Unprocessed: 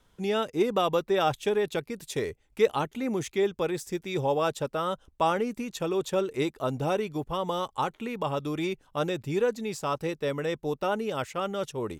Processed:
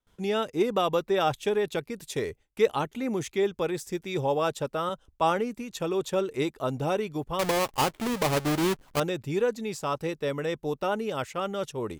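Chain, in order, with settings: 7.39–9 half-waves squared off; gate with hold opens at -54 dBFS; 4.89–5.72 three-band expander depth 40%

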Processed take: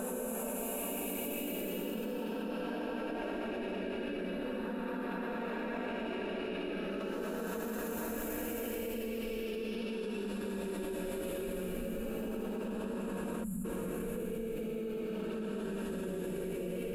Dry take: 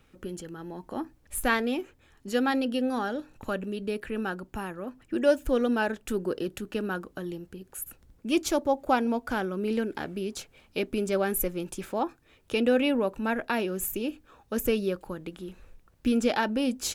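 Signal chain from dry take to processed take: repeats that get brighter 0.263 s, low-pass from 200 Hz, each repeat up 2 oct, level 0 dB; Paulstretch 10×, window 0.25 s, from 13.78; spectral gain 13.44–13.65, 240–6800 Hz -23 dB; level quantiser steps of 20 dB; gain +2.5 dB

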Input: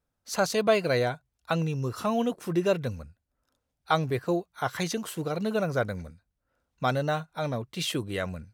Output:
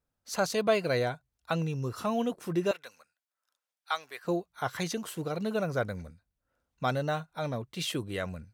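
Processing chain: 2.71–4.25 HPF 1100 Hz 12 dB/oct; gain -3 dB

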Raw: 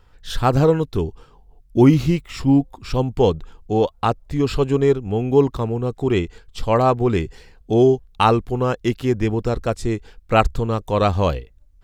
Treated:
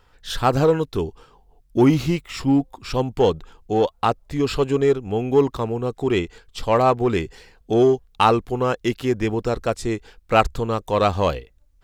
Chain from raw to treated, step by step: low shelf 240 Hz -8 dB; in parallel at -9 dB: hard clip -16.5 dBFS, distortion -10 dB; on the sum: gain -1 dB

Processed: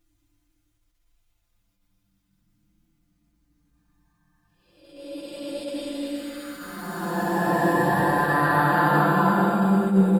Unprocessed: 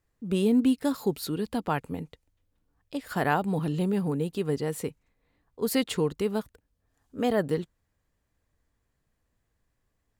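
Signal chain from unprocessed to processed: bin magnitudes rounded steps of 30 dB; Paulstretch 8.3×, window 0.25 s, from 2.27; comb 5.8 ms, depth 97%; echo with dull and thin repeats by turns 0.112 s, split 930 Hz, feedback 79%, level -8.5 dB; reverb RT60 0.90 s, pre-delay 5 ms, DRR 3 dB; attack slew limiter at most 110 dB/s

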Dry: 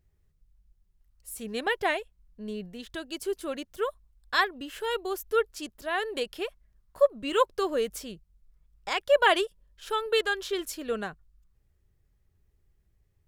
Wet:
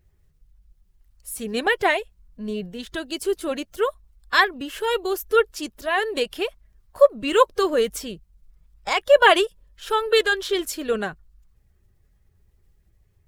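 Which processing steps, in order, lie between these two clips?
bin magnitudes rounded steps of 15 dB; gain +7.5 dB

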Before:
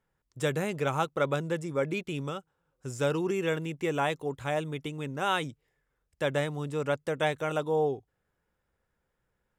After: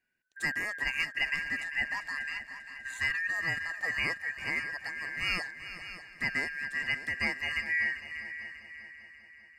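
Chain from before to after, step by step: four-band scrambler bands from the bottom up 2143; multi-head echo 0.197 s, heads second and third, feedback 50%, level -13 dB; gain -3.5 dB

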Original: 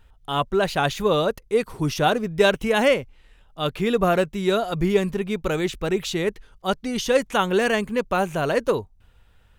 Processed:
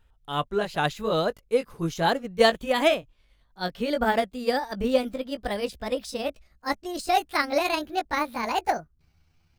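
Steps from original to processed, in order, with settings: gliding pitch shift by +8.5 st starting unshifted; upward expander 1.5:1, over -31 dBFS

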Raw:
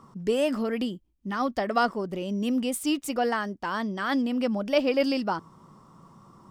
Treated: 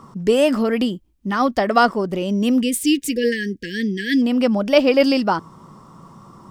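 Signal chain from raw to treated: 2.61–4.22 brick-wall FIR band-stop 510–1600 Hz; gain +9 dB

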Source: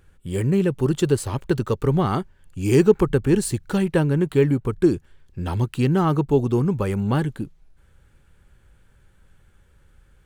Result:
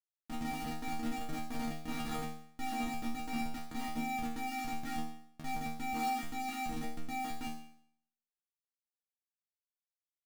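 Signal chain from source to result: 1.38–2.66 sine-wave speech; vocoder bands 16, square 259 Hz; on a send: tape echo 72 ms, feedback 22%, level -18.5 dB, low-pass 2600 Hz; on the sum: Schmitt trigger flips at -30 dBFS; resonator bank D#3 fifth, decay 0.62 s; gain +5.5 dB

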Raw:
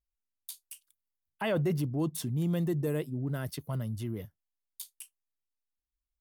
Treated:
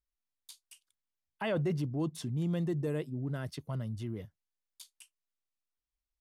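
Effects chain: LPF 7400 Hz 12 dB/oct; gain -2.5 dB

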